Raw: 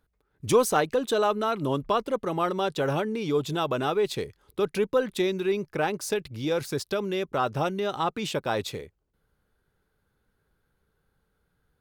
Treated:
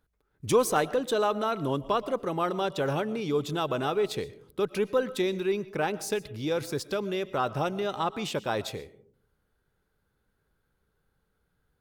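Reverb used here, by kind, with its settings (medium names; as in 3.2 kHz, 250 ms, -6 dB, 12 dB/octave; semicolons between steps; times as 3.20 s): algorithmic reverb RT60 0.53 s, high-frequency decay 0.3×, pre-delay 80 ms, DRR 17 dB; trim -2 dB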